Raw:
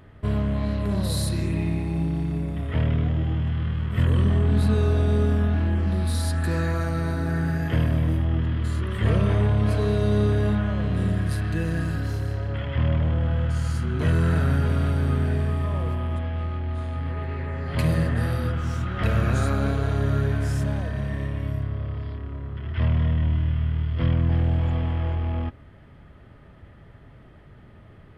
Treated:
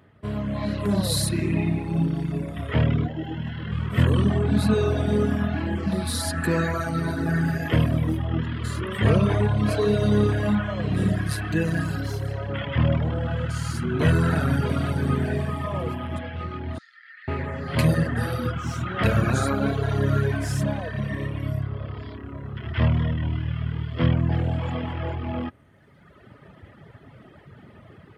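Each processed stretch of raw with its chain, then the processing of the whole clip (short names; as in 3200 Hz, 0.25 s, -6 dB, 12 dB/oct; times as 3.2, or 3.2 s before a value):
3.06–3.72 median filter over 3 samples + bell 9300 Hz -10.5 dB 0.38 oct + notch comb 1200 Hz
16.78–17.28 rippled Chebyshev high-pass 1300 Hz, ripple 9 dB + air absorption 77 m
whole clip: reverb removal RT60 1.7 s; HPF 110 Hz 12 dB/oct; AGC gain up to 11 dB; gain -4 dB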